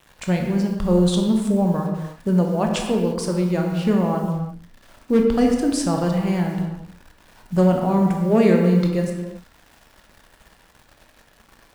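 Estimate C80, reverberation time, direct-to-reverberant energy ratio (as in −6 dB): 5.0 dB, non-exponential decay, 1.5 dB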